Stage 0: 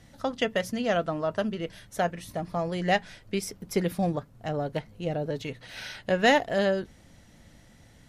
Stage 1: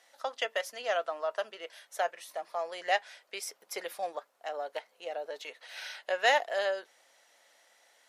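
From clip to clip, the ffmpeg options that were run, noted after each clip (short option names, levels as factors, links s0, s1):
-af "highpass=f=560:w=0.5412,highpass=f=560:w=1.3066,volume=0.75"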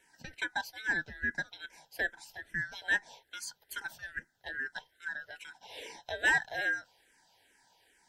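-filter_complex "[0:a]afftfilt=real='real(if(lt(b,960),b+48*(1-2*mod(floor(b/48),2)),b),0)':imag='imag(if(lt(b,960),b+48*(1-2*mod(floor(b/48),2)),b),0)':win_size=2048:overlap=0.75,asplit=2[s0][s1];[s1]afreqshift=-2.4[s2];[s0][s2]amix=inputs=2:normalize=1"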